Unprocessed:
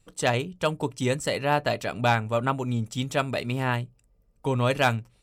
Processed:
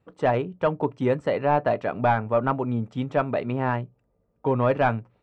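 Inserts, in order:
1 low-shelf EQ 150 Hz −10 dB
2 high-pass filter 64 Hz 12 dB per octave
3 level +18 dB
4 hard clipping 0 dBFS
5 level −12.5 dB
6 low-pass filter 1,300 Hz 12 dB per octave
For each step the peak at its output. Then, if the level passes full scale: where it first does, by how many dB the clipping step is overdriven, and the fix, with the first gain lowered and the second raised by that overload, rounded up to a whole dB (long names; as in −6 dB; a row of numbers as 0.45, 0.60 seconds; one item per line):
−9.5, −8.5, +9.5, 0.0, −12.5, −12.0 dBFS
step 3, 9.5 dB
step 3 +8 dB, step 5 −2.5 dB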